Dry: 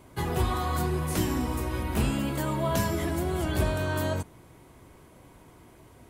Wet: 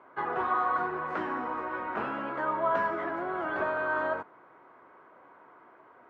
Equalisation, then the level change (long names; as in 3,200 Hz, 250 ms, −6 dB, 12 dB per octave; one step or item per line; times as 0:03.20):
high-pass filter 460 Hz 12 dB per octave
low-pass with resonance 1,400 Hz, resonance Q 2.6
high-frequency loss of the air 69 metres
0.0 dB